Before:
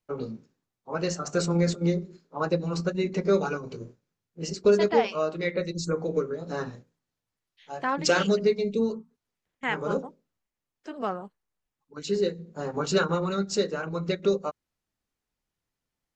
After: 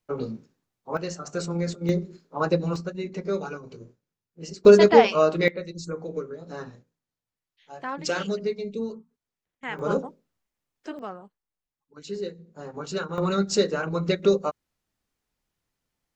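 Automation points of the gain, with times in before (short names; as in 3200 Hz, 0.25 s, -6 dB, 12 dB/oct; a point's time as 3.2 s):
+3 dB
from 0.97 s -4 dB
from 1.89 s +3 dB
from 2.76 s -5 dB
from 4.65 s +7.5 dB
from 5.48 s -5 dB
from 9.79 s +3 dB
from 10.99 s -6.5 dB
from 13.18 s +4 dB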